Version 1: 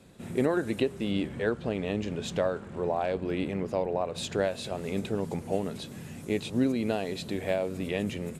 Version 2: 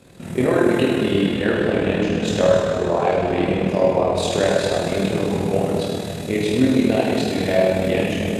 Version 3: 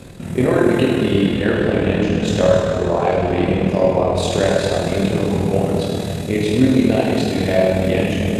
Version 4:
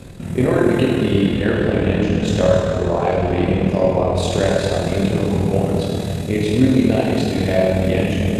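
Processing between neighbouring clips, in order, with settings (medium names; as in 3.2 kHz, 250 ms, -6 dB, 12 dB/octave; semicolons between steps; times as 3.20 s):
plate-style reverb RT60 2.6 s, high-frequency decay 1×, DRR -6 dB; AM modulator 39 Hz, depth 35%; trim +7 dB
bass shelf 120 Hz +9 dB; reverse; upward compressor, threshold -19 dBFS; reverse; trim +1 dB
bass shelf 120 Hz +6 dB; trim -1.5 dB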